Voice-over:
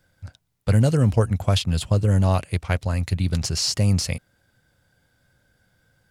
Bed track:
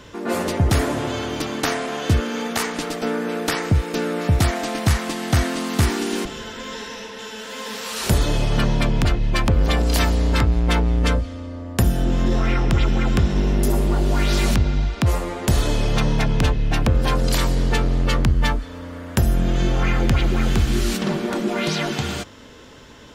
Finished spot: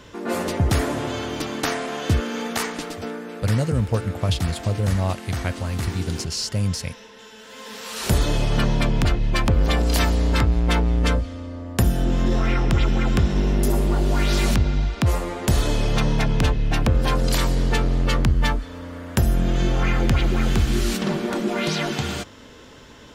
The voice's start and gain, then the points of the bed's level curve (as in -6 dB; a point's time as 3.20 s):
2.75 s, -3.5 dB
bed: 2.64 s -2 dB
3.28 s -10 dB
7.39 s -10 dB
8.16 s -1 dB